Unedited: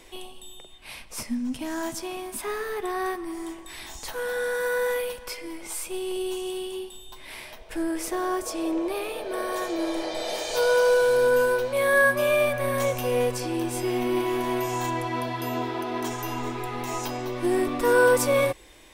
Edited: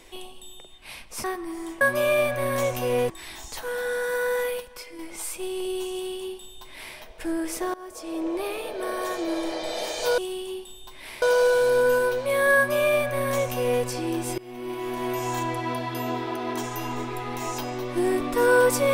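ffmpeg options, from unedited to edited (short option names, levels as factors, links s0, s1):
-filter_complex "[0:a]asplit=10[s0][s1][s2][s3][s4][s5][s6][s7][s8][s9];[s0]atrim=end=1.242[s10];[s1]atrim=start=3.038:end=3.612[s11];[s2]atrim=start=12.028:end=13.322[s12];[s3]atrim=start=3.608:end=5.112[s13];[s4]atrim=start=5.108:end=5.502,asetpts=PTS-STARTPTS,volume=0.562[s14];[s5]atrim=start=5.498:end=8.25,asetpts=PTS-STARTPTS,afade=t=out:st=2.748:d=0.004:c=hsin:silence=0.0891251[s15];[s6]atrim=start=8.25:end=10.692,asetpts=PTS-STARTPTS,afade=t=in:d=0.64:silence=0.0891251[s16];[s7]atrim=start=6.428:end=7.472[s17];[s8]atrim=start=10.688:end=13.85,asetpts=PTS-STARTPTS,afade=t=out:st=3.158:d=0.004:c=hsin:silence=0.0794328[s18];[s9]atrim=start=13.85,asetpts=PTS-STARTPTS,afade=t=in:d=0.88:silence=0.0794328[s19];[s10][s11]acrossfade=d=0.004:c1=hsin:c2=hsin[s20];[s20][s12]acrossfade=d=0.004:c1=hsin:c2=hsin[s21];[s21][s13]acrossfade=d=0.004:c1=hsin:c2=hsin[s22];[s22][s14]acrossfade=d=0.004:c1=hsin:c2=hsin[s23];[s15][s16]concat=n=2:v=0:a=1[s24];[s23][s24]acrossfade=d=0.004:c1=hsin:c2=hsin[s25];[s25][s17]acrossfade=d=0.004:c1=hsin:c2=hsin[s26];[s18][s19]concat=n=2:v=0:a=1[s27];[s26][s27]acrossfade=d=0.004:c1=hsin:c2=hsin"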